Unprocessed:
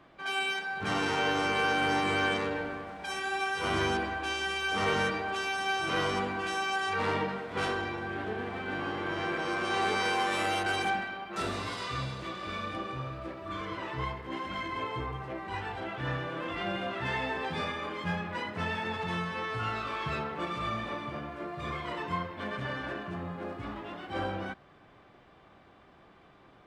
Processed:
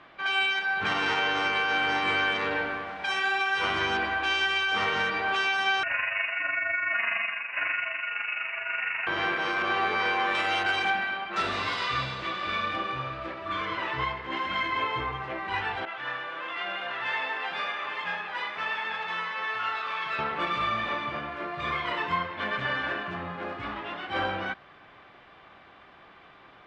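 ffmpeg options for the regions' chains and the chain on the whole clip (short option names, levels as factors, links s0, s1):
-filter_complex "[0:a]asettb=1/sr,asplit=3[s0][s1][s2];[s0]atrim=end=5.834[s3];[s1]atrim=start=5.83:end=9.07,asetpts=PTS-STARTPTS,afade=t=in:d=0.004:c=qsin,afade=t=out:st=3.236:d=0.004:c=qsin,lowshelf=f=370:g=-11.5,tremolo=f=24:d=0.519,lowpass=f=2600:t=q:w=0.5098,lowpass=f=2600:t=q:w=0.6013,lowpass=f=2600:t=q:w=0.9,lowpass=f=2600:t=q:w=2.563,afreqshift=-3000[s4];[s2]atrim=start=9.066[s5];[s3][s4]acrossfade=d=0.004:c1=hsin:c2=qsin[s6];[s6][s5]acrossfade=d=0.004:c1=qsin:c2=hsin,asettb=1/sr,asplit=3[s7][s8][s9];[s7]atrim=end=9.624[s10];[s8]atrim=start=9.62:end=10.35,asetpts=PTS-STARTPTS,afade=t=in:d=0.004:c=qsin,afade=t=out:st=0.726:d=0.004:c=qsin,lowpass=f=2100:p=1,asplit=2[s11][s12];[s12]adelay=12,volume=0.251[s13];[s11][s13]amix=inputs=2:normalize=0,atrim=end_sample=32193[s14];[s9]atrim=start=10.346[s15];[s10][s14]acrossfade=d=0.004:c1=hsin:c2=qsin[s16];[s16][s15]acrossfade=d=0.004:c1=qsin:c2=hsin,asettb=1/sr,asplit=3[s17][s18][s19];[s17]atrim=end=15.854[s20];[s18]atrim=start=15.85:end=20.19,asetpts=PTS-STARTPTS,afade=t=in:d=0.004:c=qsin,afade=t=out:st=4.336:d=0.004:c=qsin,highpass=f=1200:p=1,aecho=1:1:835:0.422,atrim=end_sample=191394,adynamicequalizer=threshold=0.00398:dfrequency=1600:dqfactor=0.7:tfrequency=1600:tqfactor=0.7:attack=5:release=100:ratio=0.375:range=2.5:mode=cutabove:tftype=highshelf[s21];[s19]atrim=start=20.186[s22];[s20][s21]acrossfade=d=0.004:c1=hsin:c2=qsin[s23];[s23][s22]acrossfade=d=0.004:c1=qsin:c2=hsin,lowpass=3400,tiltshelf=f=770:g=-7,alimiter=limit=0.075:level=0:latency=1:release=201,volume=1.78"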